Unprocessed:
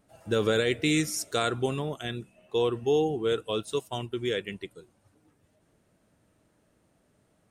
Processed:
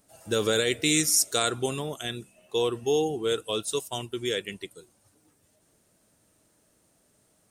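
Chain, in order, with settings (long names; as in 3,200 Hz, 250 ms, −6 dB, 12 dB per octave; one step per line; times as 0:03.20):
bass and treble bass −3 dB, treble +12 dB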